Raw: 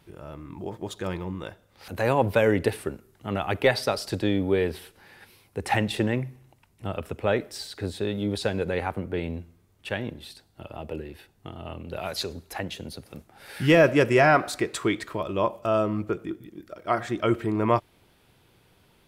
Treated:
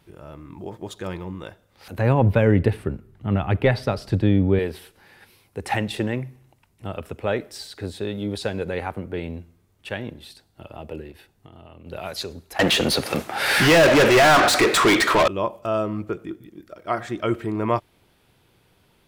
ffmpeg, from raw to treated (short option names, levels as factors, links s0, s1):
-filter_complex "[0:a]asettb=1/sr,asplit=3[s0][s1][s2];[s0]atrim=end=1.984[s3];[s1]atrim=start=1.98:end=4.59,asetpts=PTS-STARTPTS,afade=t=in:d=0.004:c=qsin,afade=t=out:st=2.606:d=0.004:c=qsin,bass=f=250:g=12,treble=f=4000:g=-10[s4];[s2]atrim=start=4.586[s5];[s3][s4]acrossfade=d=0.004:c1=hsin:c2=qsin[s6];[s6][s5]acrossfade=d=0.004:c1=qsin:c2=hsin,asettb=1/sr,asplit=3[s7][s8][s9];[s7]atrim=end=11.114[s10];[s8]atrim=start=11.11:end=11.86,asetpts=PTS-STARTPTS,afade=t=in:d=0.004:c=qsin,afade=t=out:st=0.746:d=0.004:c=qsin,acompressor=threshold=0.00891:ratio=6:attack=3.2:release=140:knee=1:detection=peak[s11];[s9]atrim=start=11.856[s12];[s10][s11]acrossfade=d=0.004:c1=hsin:c2=qsin[s13];[s13][s12]acrossfade=d=0.004:c1=qsin:c2=hsin,asettb=1/sr,asplit=3[s14][s15][s16];[s14]atrim=end=12.594[s17];[s15]atrim=start=12.59:end=15.28,asetpts=PTS-STARTPTS,afade=t=in:d=0.004:c=qsin,afade=t=out:st=2.686:d=0.004:c=qsin,asplit=2[s18][s19];[s19]highpass=f=720:p=1,volume=56.2,asoftclip=type=tanh:threshold=0.376[s20];[s18][s20]amix=inputs=2:normalize=0,lowpass=f=4600:p=1,volume=0.501[s21];[s16]atrim=start=15.276[s22];[s17][s21]acrossfade=d=0.004:c1=hsin:c2=qsin[s23];[s23][s22]acrossfade=d=0.004:c1=qsin:c2=hsin"